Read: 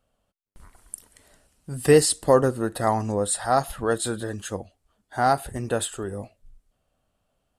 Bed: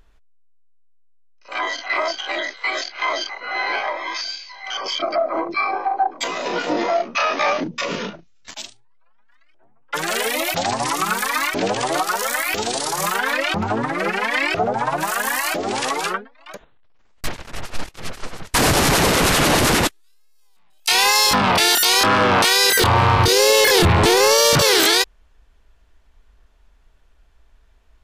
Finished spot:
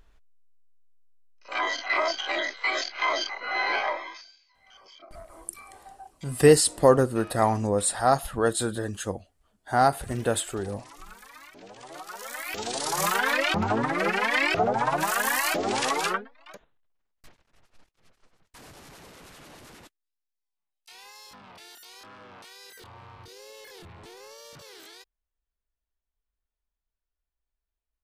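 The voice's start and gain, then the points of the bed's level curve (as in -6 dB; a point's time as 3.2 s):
4.55 s, 0.0 dB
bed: 3.93 s -3.5 dB
4.32 s -27 dB
11.63 s -27 dB
12.99 s -3.5 dB
16.29 s -3.5 dB
17.47 s -33 dB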